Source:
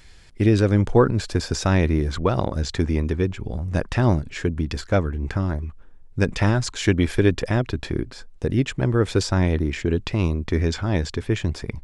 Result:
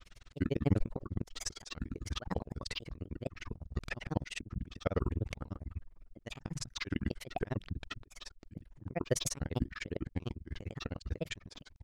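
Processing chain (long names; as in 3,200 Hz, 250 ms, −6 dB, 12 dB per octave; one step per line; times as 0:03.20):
granular cloud 43 ms, grains 20 per second, pitch spread up and down by 7 semitones
volume swells 176 ms
level −4 dB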